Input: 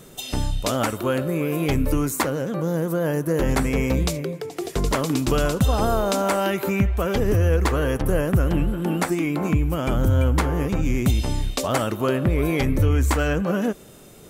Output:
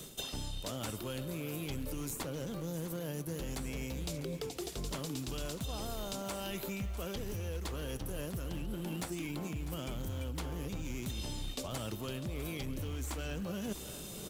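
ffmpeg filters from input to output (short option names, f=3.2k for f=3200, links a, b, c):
-filter_complex "[0:a]highshelf=f=2.5k:t=q:w=1.5:g=7,asplit=2[a][b];[b]acrusher=samples=41:mix=1:aa=0.000001:lfo=1:lforange=65.6:lforate=2.5,volume=-11.5dB[c];[a][c]amix=inputs=2:normalize=0,acrossover=split=160|2300[d][e][f];[d]acompressor=threshold=-23dB:ratio=4[g];[e]acompressor=threshold=-25dB:ratio=4[h];[f]acompressor=threshold=-27dB:ratio=4[i];[g][h][i]amix=inputs=3:normalize=0,volume=16.5dB,asoftclip=hard,volume=-16.5dB,areverse,acompressor=threshold=-33dB:ratio=10,areverse,aecho=1:1:650:0.2,volume=-3dB"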